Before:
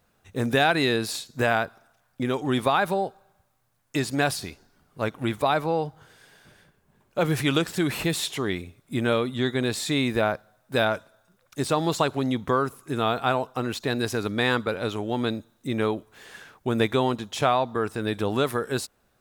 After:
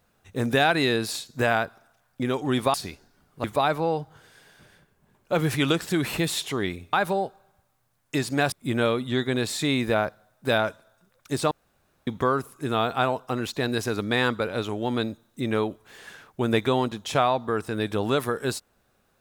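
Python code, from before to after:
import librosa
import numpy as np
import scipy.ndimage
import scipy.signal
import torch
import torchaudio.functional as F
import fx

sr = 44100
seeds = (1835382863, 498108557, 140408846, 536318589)

y = fx.edit(x, sr, fx.move(start_s=2.74, length_s=1.59, to_s=8.79),
    fx.cut(start_s=5.03, length_s=0.27),
    fx.room_tone_fill(start_s=11.78, length_s=0.56), tone=tone)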